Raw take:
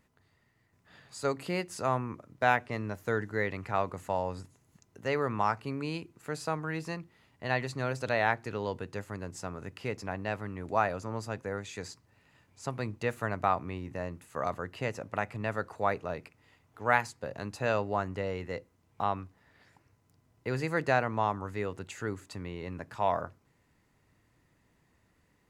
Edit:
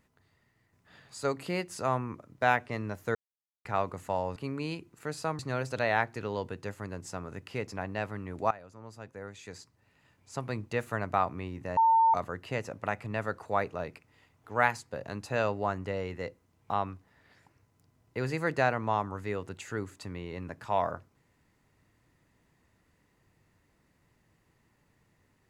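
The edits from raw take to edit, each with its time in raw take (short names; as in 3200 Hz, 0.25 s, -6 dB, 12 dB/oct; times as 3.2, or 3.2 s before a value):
3.15–3.65 mute
4.36–5.59 cut
6.62–7.69 cut
10.81–12.79 fade in, from -18 dB
14.07–14.44 bleep 903 Hz -19 dBFS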